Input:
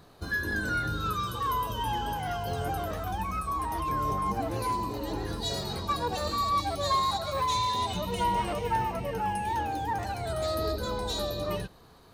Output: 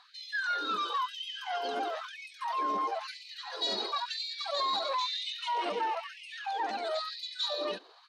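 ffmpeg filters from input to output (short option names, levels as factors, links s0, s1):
-filter_complex "[0:a]acrossover=split=180[s0][s1];[s1]alimiter=level_in=1.06:limit=0.0631:level=0:latency=1:release=15,volume=0.944[s2];[s0][s2]amix=inputs=2:normalize=0,lowpass=f=4200:t=q:w=1.8,atempo=1.5,afftfilt=real='re*gte(b*sr/1024,210*pow(2000/210,0.5+0.5*sin(2*PI*1*pts/sr)))':imag='im*gte(b*sr/1024,210*pow(2000/210,0.5+0.5*sin(2*PI*1*pts/sr)))':win_size=1024:overlap=0.75"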